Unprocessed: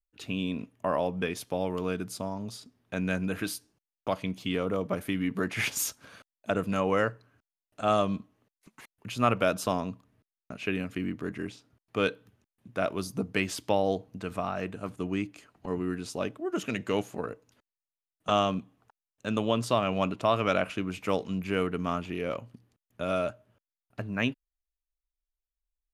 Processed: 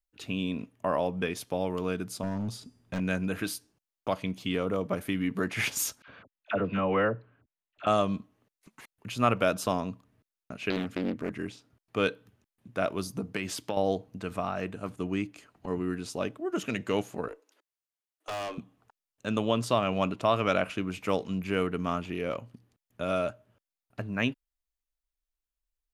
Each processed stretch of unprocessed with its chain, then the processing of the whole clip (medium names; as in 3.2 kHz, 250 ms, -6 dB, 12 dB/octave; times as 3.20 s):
2.23–3.00 s: bass shelf 250 Hz +10 dB + de-hum 437.7 Hz, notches 32 + hard clipper -27.5 dBFS
6.02–7.87 s: low-pass 3.3 kHz 24 dB/octave + phase dispersion lows, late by 57 ms, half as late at 930 Hz
10.70–11.30 s: peaking EQ 230 Hz +5.5 dB 0.41 oct + loudspeaker Doppler distortion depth 0.56 ms
13.17–13.77 s: high-pass 79 Hz + compression 10:1, threshold -26 dBFS
17.28–18.58 s: steep high-pass 300 Hz 48 dB/octave + valve stage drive 32 dB, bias 0.3
whole clip: none